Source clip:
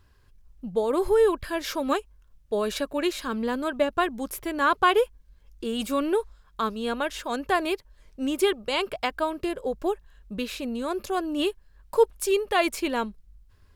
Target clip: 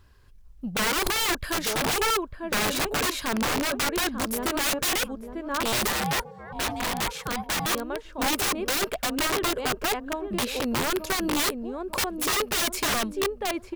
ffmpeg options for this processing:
ffmpeg -i in.wav -filter_complex "[0:a]asplit=2[link_01][link_02];[link_02]adelay=898,lowpass=frequency=1000:poles=1,volume=-6.5dB,asplit=2[link_03][link_04];[link_04]adelay=898,lowpass=frequency=1000:poles=1,volume=0.37,asplit=2[link_05][link_06];[link_06]adelay=898,lowpass=frequency=1000:poles=1,volume=0.37,asplit=2[link_07][link_08];[link_08]adelay=898,lowpass=frequency=1000:poles=1,volume=0.37[link_09];[link_01][link_03][link_05][link_07][link_09]amix=inputs=5:normalize=0,asettb=1/sr,asplit=3[link_10][link_11][link_12];[link_10]atrim=end=5.874[link_13];[link_11]atrim=start=5.87:end=7.66,asetpts=PTS-STARTPTS,afade=type=in:duration=0.004:curve=qsin,afade=type=out:start_time=1.786:duration=0.004:curve=qsin,aeval=exprs='val(0)*sin(2*PI*490*n/s)':channel_layout=same[link_14];[link_12]atrim=start=7.656[link_15];[link_13][link_14]acrossfade=duration=0.004:curve1=hsin:curve2=qsin[link_16];[link_16][link_15]acrossfade=duration=0.004:curve1=qsin:curve2=hsin,aeval=exprs='(mod(14.1*val(0)+1,2)-1)/14.1':channel_layout=same,volume=3dB" out.wav

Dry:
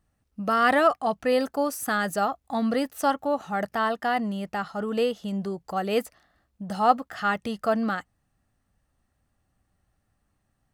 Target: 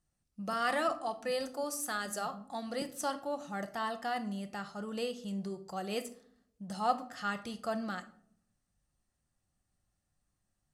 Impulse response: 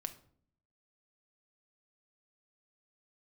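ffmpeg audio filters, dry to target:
-filter_complex "[0:a]lowpass=9400,bass=frequency=250:gain=1,treble=frequency=4000:gain=12,asettb=1/sr,asplit=3[link_01][link_02][link_03];[link_01]atrim=end=0.534[link_04];[link_02]atrim=start=0.53:end=2.82,asetpts=PTS-STARTPTS,afade=type=in:duration=0.004:curve=qsin,afade=type=out:start_time=2.286:duration=0.004:curve=qsin,acrossover=split=210[link_05][link_06];[link_05]adelay=170[link_07];[link_07][link_06]amix=inputs=2:normalize=0,atrim=end_sample=100989[link_08];[link_03]atrim=start=2.816[link_09];[link_04][link_08]acrossfade=duration=0.004:curve1=hsin:curve2=qsin[link_10];[link_10][link_09]acrossfade=duration=0.004:curve1=qsin:curve2=hsin[link_11];[1:a]atrim=start_sample=2205[link_12];[link_11][link_12]afir=irnorm=-1:irlink=0,volume=-9dB"

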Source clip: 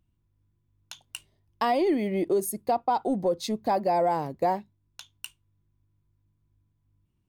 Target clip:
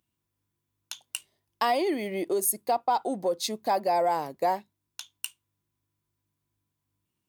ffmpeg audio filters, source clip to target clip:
ffmpeg -i in.wav -af "highpass=frequency=530:poles=1,highshelf=frequency=5300:gain=7,volume=1.5dB" out.wav

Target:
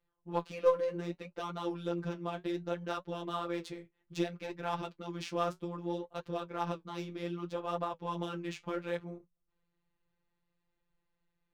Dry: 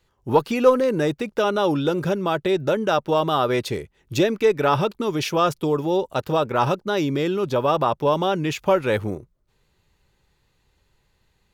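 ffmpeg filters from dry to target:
ffmpeg -i in.wav -af "afftfilt=real='hypot(re,im)*cos(PI*b)':imag='0':win_size=1024:overlap=0.75,aeval=exprs='0.668*(cos(1*acos(clip(val(0)/0.668,-1,1)))-cos(1*PI/2))+0.0168*(cos(2*acos(clip(val(0)/0.668,-1,1)))-cos(2*PI/2))+0.0188*(cos(3*acos(clip(val(0)/0.668,-1,1)))-cos(3*PI/2))':channel_layout=same,adynamicsmooth=sensitivity=7.5:basefreq=3300,flanger=delay=6.9:depth=9.4:regen=-46:speed=0.64:shape=triangular,volume=-7.5dB" out.wav

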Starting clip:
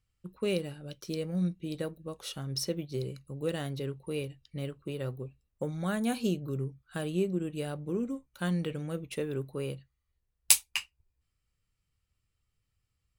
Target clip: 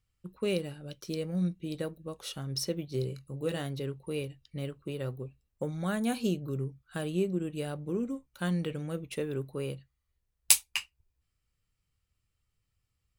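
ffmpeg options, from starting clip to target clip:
ffmpeg -i in.wav -filter_complex "[0:a]asettb=1/sr,asplit=3[link_01][link_02][link_03];[link_01]atrim=end=2.854[link_04];[link_02]atrim=start=2.85:end=3.63,asetpts=PTS-STARTPTS,afade=type=in:duration=0.004:curve=qsin,afade=type=out:start_time=0.776:duration=0.004:curve=qsin,asplit=2[link_05][link_06];[link_06]adelay=23,volume=-9dB[link_07];[link_05][link_07]amix=inputs=2:normalize=0,atrim=end_sample=34398[link_08];[link_03]atrim=start=3.626[link_09];[link_04][link_08]acrossfade=duration=0.004:curve1=hsin:curve2=qsin[link_10];[link_10][link_09]acrossfade=duration=0.004:curve1=qsin:curve2=hsin" out.wav

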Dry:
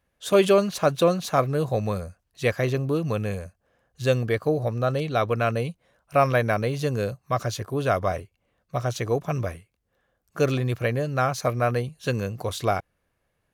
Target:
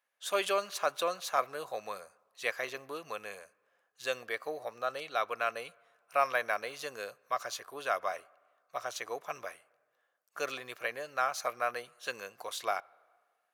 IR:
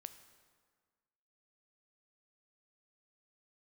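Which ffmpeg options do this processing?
-filter_complex "[0:a]highpass=900,asplit=2[link_01][link_02];[1:a]atrim=start_sample=2205,lowpass=2600[link_03];[link_02][link_03]afir=irnorm=-1:irlink=0,volume=-7dB[link_04];[link_01][link_04]amix=inputs=2:normalize=0,volume=-5dB"

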